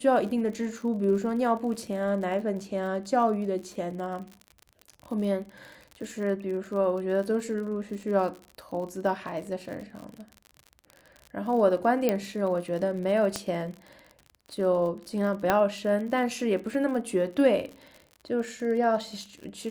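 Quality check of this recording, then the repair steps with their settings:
crackle 52 per s -36 dBFS
12.09 s: pop -11 dBFS
13.36 s: pop -14 dBFS
15.50 s: pop -9 dBFS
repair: de-click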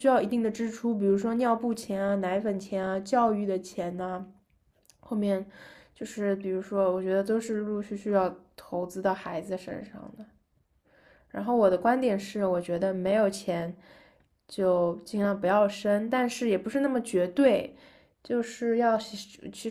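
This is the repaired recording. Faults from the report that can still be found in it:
12.09 s: pop
15.50 s: pop

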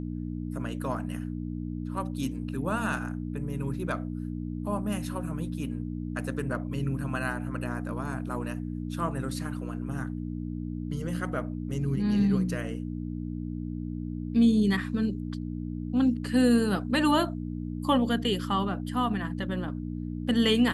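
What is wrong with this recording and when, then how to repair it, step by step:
hum 60 Hz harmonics 5 -34 dBFS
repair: de-hum 60 Hz, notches 5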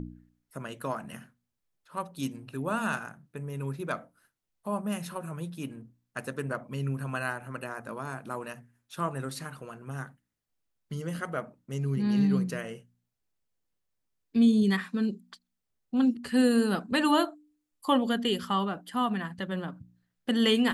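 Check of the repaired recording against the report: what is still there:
nothing left

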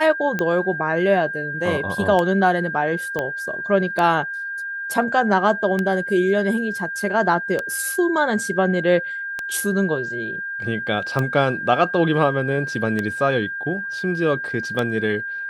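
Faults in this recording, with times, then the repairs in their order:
tick 33 1/3 rpm -10 dBFS
whine 1.6 kHz -26 dBFS
3.19 s: pop -11 dBFS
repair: de-click; band-stop 1.6 kHz, Q 30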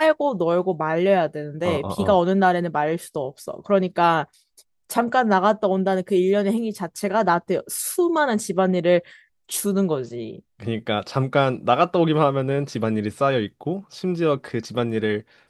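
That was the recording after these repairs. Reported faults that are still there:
3.19 s: pop

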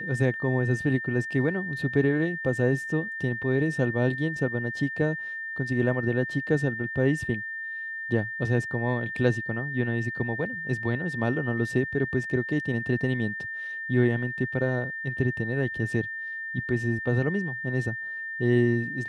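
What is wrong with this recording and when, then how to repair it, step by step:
whine 1.8 kHz -32 dBFS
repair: band-stop 1.8 kHz, Q 30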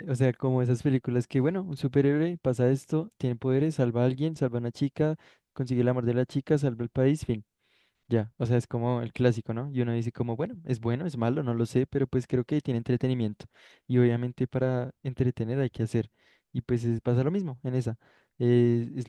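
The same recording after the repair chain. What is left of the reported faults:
nothing left

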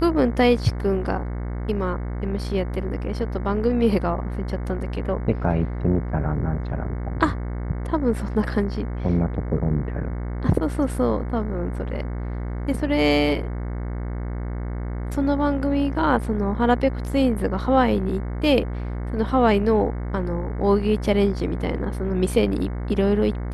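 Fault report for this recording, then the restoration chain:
buzz 60 Hz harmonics 37 -28 dBFS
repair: de-hum 60 Hz, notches 37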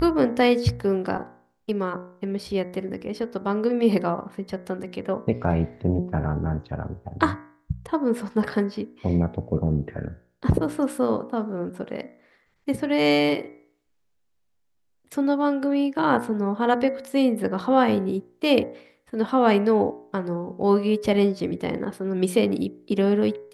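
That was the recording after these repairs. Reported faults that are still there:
nothing left

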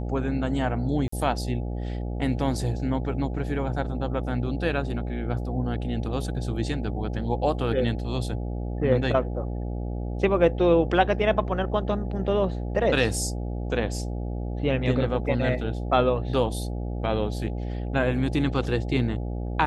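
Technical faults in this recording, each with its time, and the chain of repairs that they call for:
buzz 60 Hz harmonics 14 -30 dBFS
1.08–1.12 s: dropout 44 ms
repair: de-hum 60 Hz, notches 14; interpolate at 1.08 s, 44 ms

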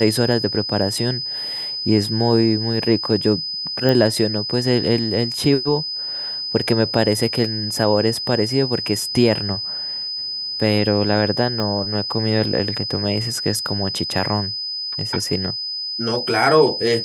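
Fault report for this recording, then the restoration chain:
whine 5 kHz -24 dBFS
3.89 s: pop -7 dBFS
11.60 s: pop -11 dBFS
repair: de-click; band-stop 5 kHz, Q 30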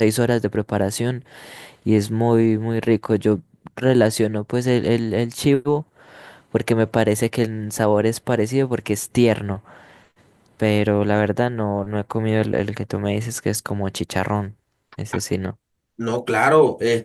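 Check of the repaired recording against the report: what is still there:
11.60 s: pop

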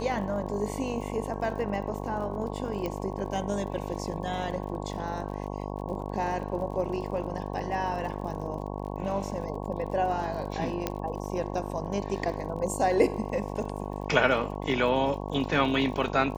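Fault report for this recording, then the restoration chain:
buzz 50 Hz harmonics 22 -35 dBFS
crackle 44 per s -39 dBFS
2.86 s: pop -19 dBFS
10.87 s: pop -13 dBFS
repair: de-click; de-hum 50 Hz, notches 22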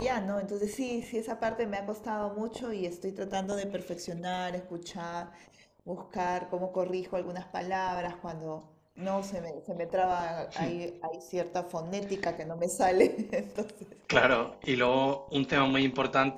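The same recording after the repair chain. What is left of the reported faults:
10.87 s: pop

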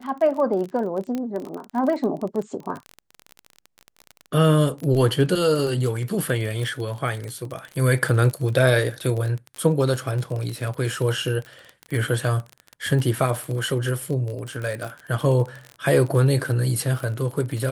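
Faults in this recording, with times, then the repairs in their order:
crackle 30 per s -27 dBFS
1.15 s: pop -16 dBFS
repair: de-click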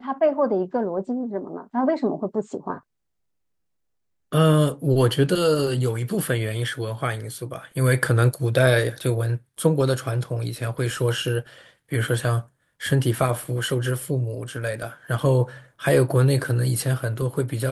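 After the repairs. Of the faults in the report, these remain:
nothing left

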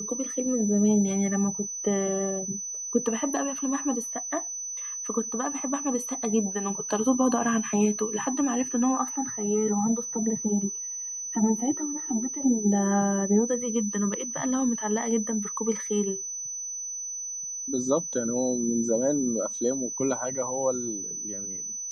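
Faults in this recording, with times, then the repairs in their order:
whine 6 kHz -32 dBFS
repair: band-stop 6 kHz, Q 30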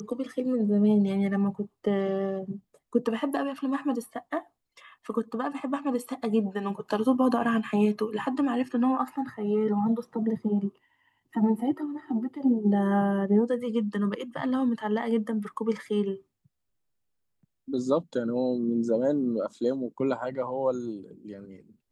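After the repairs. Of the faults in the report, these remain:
nothing left

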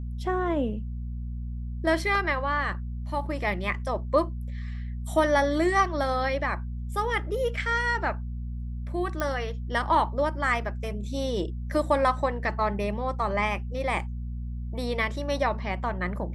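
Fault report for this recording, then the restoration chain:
hum 60 Hz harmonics 4 -33 dBFS
9.20 s: pop -15 dBFS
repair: de-click; de-hum 60 Hz, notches 4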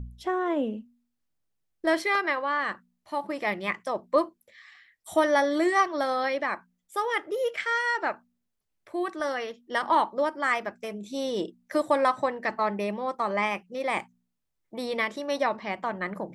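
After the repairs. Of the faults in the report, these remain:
nothing left

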